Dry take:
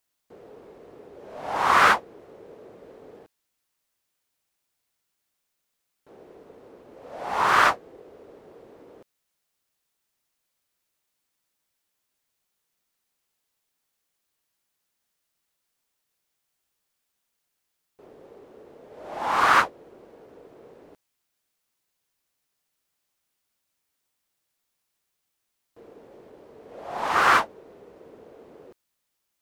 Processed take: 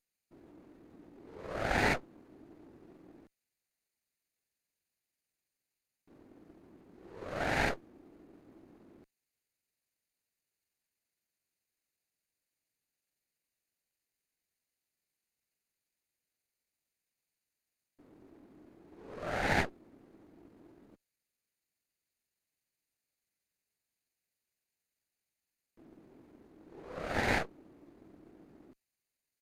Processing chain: comb filter that takes the minimum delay 0.31 ms; pitch shift -6 st; trim -8.5 dB

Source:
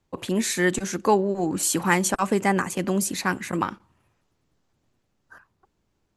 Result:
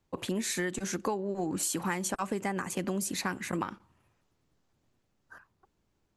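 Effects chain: compression 10:1, threshold -25 dBFS, peak gain reduction 12 dB; trim -3 dB

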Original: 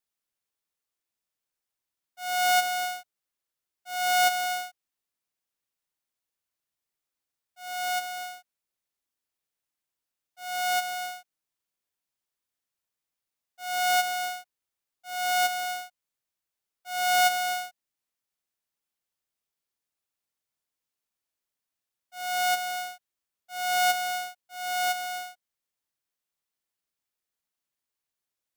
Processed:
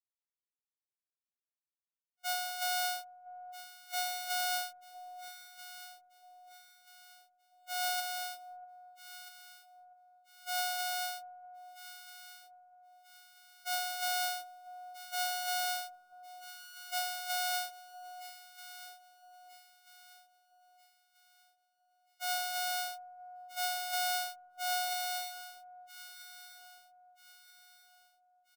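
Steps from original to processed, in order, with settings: pre-emphasis filter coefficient 0.97; gate -46 dBFS, range -35 dB; FFT filter 110 Hz 0 dB, 1.1 kHz +9 dB, 11 kHz -8 dB; compressor with a negative ratio -38 dBFS, ratio -1; doubling 14 ms -7 dB; echo whose repeats swap between lows and highs 643 ms, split 830 Hz, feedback 61%, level -10 dB; trim +2.5 dB

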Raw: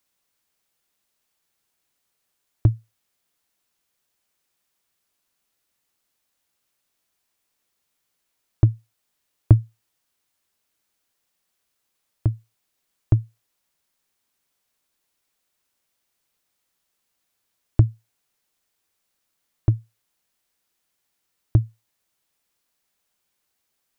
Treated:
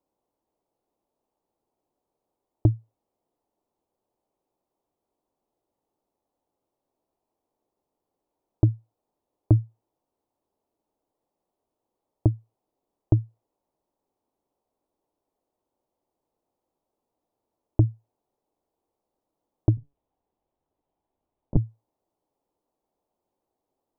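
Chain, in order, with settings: 19.77–21.57 s: monotone LPC vocoder at 8 kHz 140 Hz; FFT filter 180 Hz 0 dB, 310 Hz +8 dB, 890 Hz +5 dB, 1.6 kHz -19 dB; peak limiter -7 dBFS, peak gain reduction 8 dB

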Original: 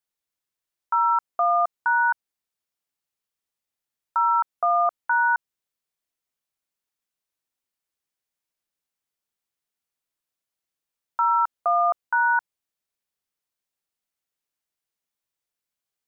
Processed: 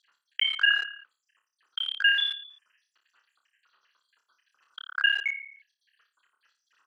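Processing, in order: random holes in the spectrogram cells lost 82%; comb 1.6 ms, depth 63%; flutter echo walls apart 11.4 m, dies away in 0.84 s; in parallel at -1 dB: bit crusher 6-bit; on the sum: high-pass 860 Hz 12 dB/octave; speed mistake 33 rpm record played at 78 rpm; low-pass 1.2 kHz 12 dB/octave; level flattener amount 50%; trim +6.5 dB

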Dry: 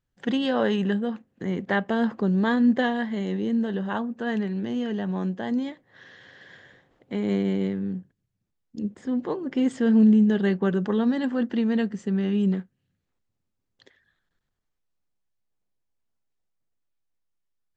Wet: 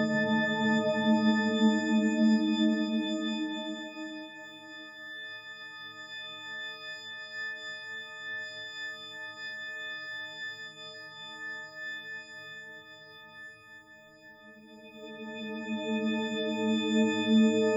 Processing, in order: partials quantised in pitch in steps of 6 st; pre-echo 42 ms -16 dB; Paulstretch 9.4×, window 0.50 s, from 5.37 s

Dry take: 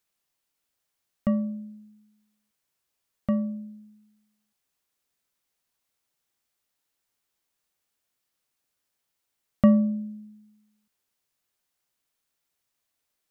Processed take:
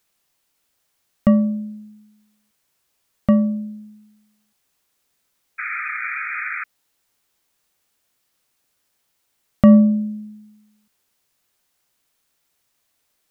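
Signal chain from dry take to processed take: painted sound noise, 5.58–6.64 s, 1.2–2.5 kHz -37 dBFS; loudness maximiser +11 dB; trim -1 dB

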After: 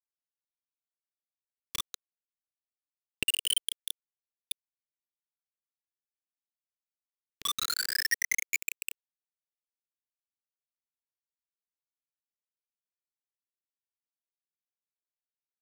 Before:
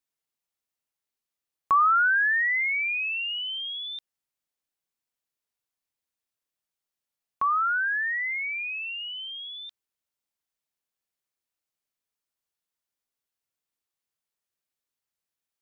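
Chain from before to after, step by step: distance through air 73 m; 3.95–7.66 s: three bands offset in time mids, lows, highs 130/530 ms, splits 180/1700 Hz; peak limiter -25 dBFS, peak gain reduction 9 dB; simulated room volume 34 m³, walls mixed, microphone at 0.78 m; LFO notch saw up 0.31 Hz 470–3000 Hz; compression 3:1, threshold -33 dBFS, peak gain reduction 9.5 dB; small samples zeroed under -29 dBFS; high-order bell 900 Hz -12.5 dB; trim +9 dB

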